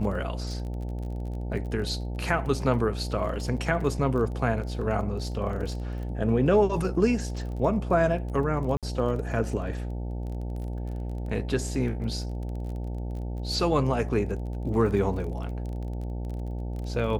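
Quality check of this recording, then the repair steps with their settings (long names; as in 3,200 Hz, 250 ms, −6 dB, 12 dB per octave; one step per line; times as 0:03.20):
mains buzz 60 Hz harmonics 15 −32 dBFS
surface crackle 24 per second −36 dBFS
0:08.77–0:08.83: drop-out 57 ms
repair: click removal
hum removal 60 Hz, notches 15
repair the gap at 0:08.77, 57 ms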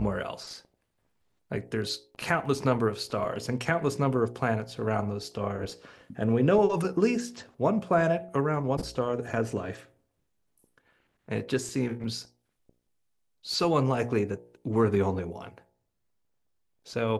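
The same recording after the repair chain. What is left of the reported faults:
none of them is left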